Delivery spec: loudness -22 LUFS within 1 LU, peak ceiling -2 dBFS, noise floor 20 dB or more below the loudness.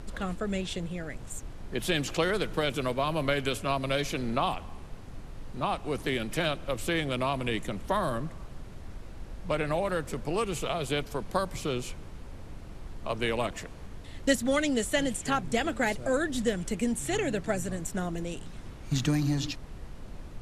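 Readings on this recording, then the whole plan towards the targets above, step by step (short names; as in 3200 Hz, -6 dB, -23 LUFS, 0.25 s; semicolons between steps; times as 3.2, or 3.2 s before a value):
noise floor -44 dBFS; noise floor target -51 dBFS; loudness -30.5 LUFS; peak -11.5 dBFS; loudness target -22.0 LUFS
-> noise print and reduce 7 dB; gain +8.5 dB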